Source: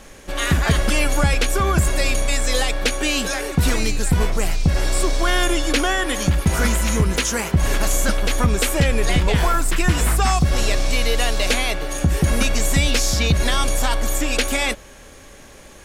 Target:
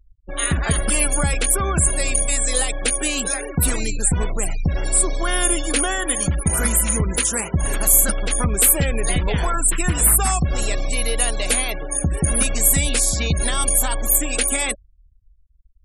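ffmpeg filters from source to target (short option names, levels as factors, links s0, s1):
-af "afftfilt=real='re*gte(hypot(re,im),0.0501)':imag='im*gte(hypot(re,im),0.0501)':win_size=1024:overlap=0.75,aexciter=amount=15.3:drive=1.3:freq=8400,volume=0.708"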